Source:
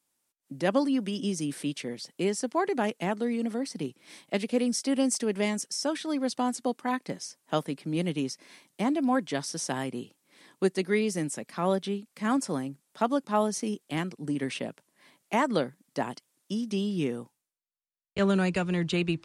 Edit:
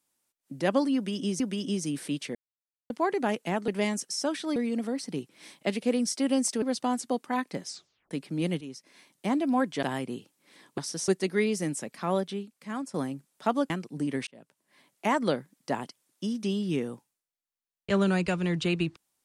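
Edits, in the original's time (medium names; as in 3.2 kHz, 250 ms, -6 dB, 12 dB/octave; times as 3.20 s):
0.95–1.40 s: loop, 2 plays
1.90–2.45 s: mute
5.29–6.17 s: move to 3.23 s
7.23 s: tape stop 0.43 s
8.16–8.88 s: fade in, from -13 dB
9.38–9.68 s: move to 10.63 s
11.53–12.49 s: fade out, to -11.5 dB
13.25–13.98 s: delete
14.55–15.60 s: fade in equal-power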